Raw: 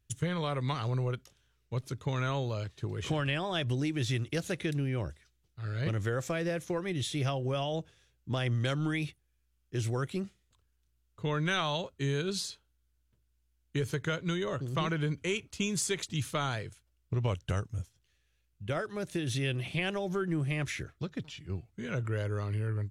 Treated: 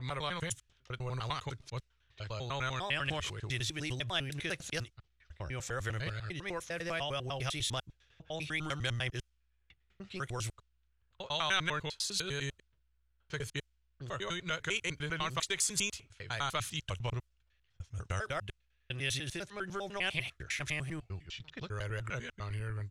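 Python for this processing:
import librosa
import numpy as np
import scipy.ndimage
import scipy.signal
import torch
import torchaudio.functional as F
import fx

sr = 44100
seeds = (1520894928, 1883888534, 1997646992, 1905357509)

y = fx.block_reorder(x, sr, ms=100.0, group=7)
y = fx.peak_eq(y, sr, hz=240.0, db=-14.0, octaves=2.7)
y = fx.env_lowpass(y, sr, base_hz=2300.0, full_db=-36.0)
y = y * 10.0 ** (2.5 / 20.0)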